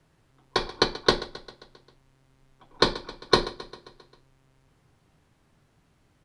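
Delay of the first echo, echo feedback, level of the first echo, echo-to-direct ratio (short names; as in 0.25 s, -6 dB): 0.133 s, 60%, -17.0 dB, -15.0 dB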